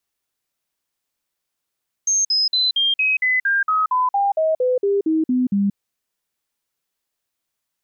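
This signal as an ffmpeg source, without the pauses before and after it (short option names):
-f lavfi -i "aevalsrc='0.178*clip(min(mod(t,0.23),0.18-mod(t,0.23))/0.005,0,1)*sin(2*PI*6400*pow(2,-floor(t/0.23)/3)*mod(t,0.23))':d=3.68:s=44100"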